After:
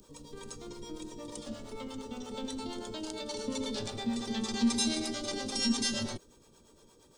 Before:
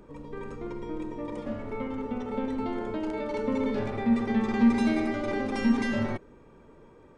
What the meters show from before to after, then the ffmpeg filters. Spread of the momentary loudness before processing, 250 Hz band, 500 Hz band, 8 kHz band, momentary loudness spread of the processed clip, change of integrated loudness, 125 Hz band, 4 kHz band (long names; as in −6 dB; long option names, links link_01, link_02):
14 LU, −8.0 dB, −8.5 dB, can't be measured, 16 LU, −5.5 dB, −8.0 dB, +11.0 dB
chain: -filter_complex "[0:a]acrossover=split=460[link_01][link_02];[link_01]aeval=exprs='val(0)*(1-0.7/2+0.7/2*cos(2*PI*8.6*n/s))':channel_layout=same[link_03];[link_02]aeval=exprs='val(0)*(1-0.7/2-0.7/2*cos(2*PI*8.6*n/s))':channel_layout=same[link_04];[link_03][link_04]amix=inputs=2:normalize=0,acrossover=split=540|2300[link_05][link_06][link_07];[link_07]aexciter=amount=13.8:drive=5:freq=3100[link_08];[link_05][link_06][link_08]amix=inputs=3:normalize=0,volume=-5dB"